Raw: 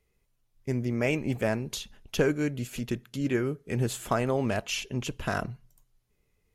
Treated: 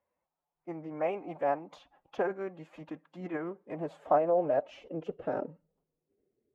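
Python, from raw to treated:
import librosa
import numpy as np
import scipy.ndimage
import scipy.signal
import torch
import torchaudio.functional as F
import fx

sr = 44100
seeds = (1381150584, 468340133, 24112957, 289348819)

y = fx.filter_sweep_bandpass(x, sr, from_hz=820.0, to_hz=340.0, start_s=3.36, end_s=6.44, q=3.2)
y = fx.pitch_keep_formants(y, sr, semitones=4.5)
y = fx.high_shelf(y, sr, hz=4100.0, db=-10.5)
y = y * librosa.db_to_amplitude(7.5)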